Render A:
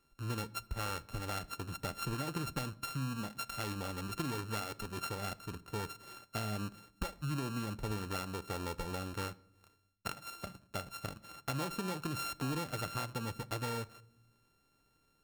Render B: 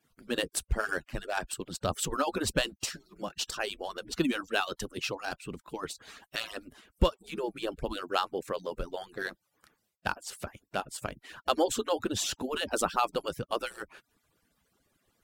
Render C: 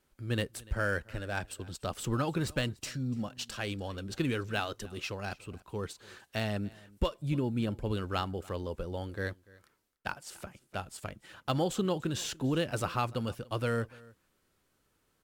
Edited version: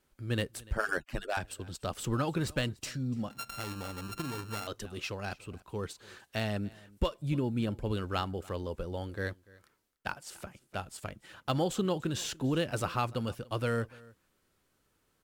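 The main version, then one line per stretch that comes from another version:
C
0.77–1.37 from B
3.31–4.67 from A

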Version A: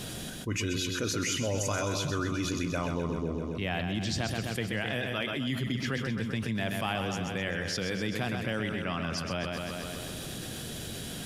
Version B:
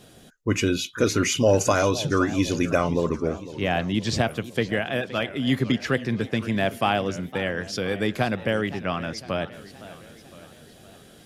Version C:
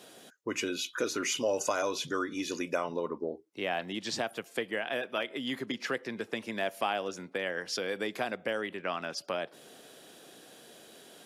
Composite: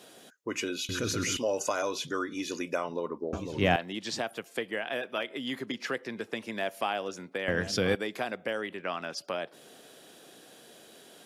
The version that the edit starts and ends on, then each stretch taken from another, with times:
C
0.89–1.37 from A
3.33–3.76 from B
7.48–7.95 from B

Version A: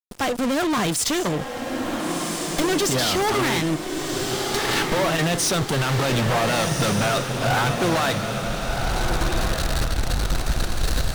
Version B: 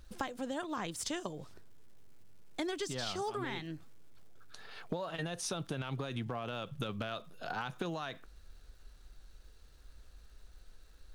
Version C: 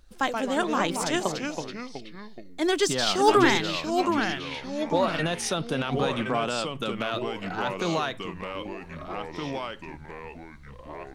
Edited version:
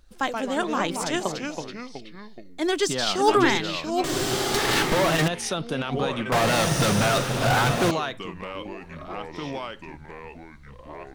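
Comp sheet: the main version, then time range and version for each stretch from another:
C
4.04–5.28 from A
6.32–7.91 from A
not used: B

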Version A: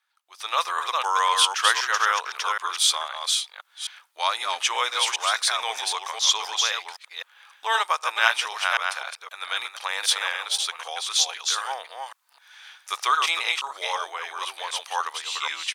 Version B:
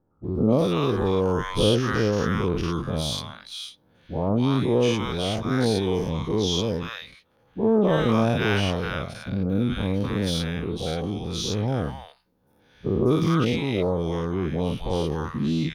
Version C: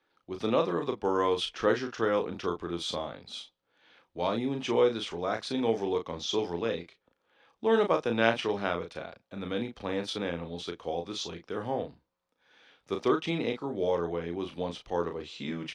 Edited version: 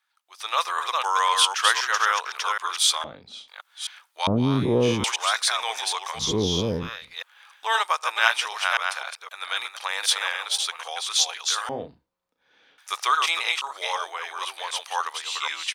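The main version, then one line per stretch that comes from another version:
A
3.04–3.48 from C
4.27–5.04 from B
6.26–7.06 from B, crossfade 0.24 s
11.69–12.78 from C

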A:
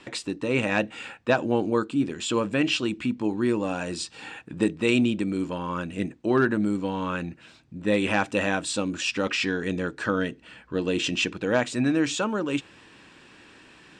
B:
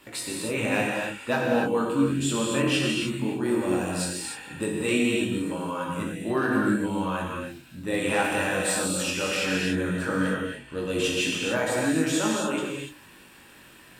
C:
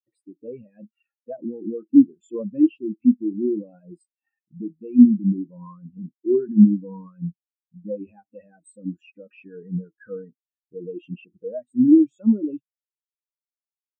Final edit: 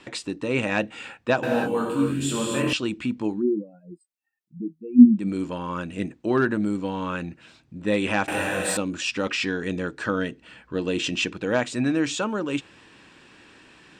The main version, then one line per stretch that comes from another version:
A
1.43–2.73 from B
3.35–5.23 from C, crossfade 0.16 s
8.28–8.77 from B

